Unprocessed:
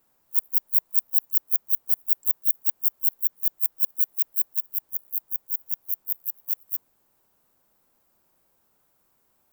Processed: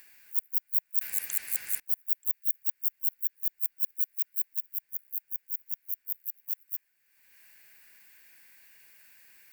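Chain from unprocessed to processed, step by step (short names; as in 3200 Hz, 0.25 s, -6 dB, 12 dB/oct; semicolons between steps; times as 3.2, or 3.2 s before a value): four-band scrambler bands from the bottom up 3142; upward compressor, threshold -35 dBFS; 1.01–1.8 spectral compressor 10:1; gain -6 dB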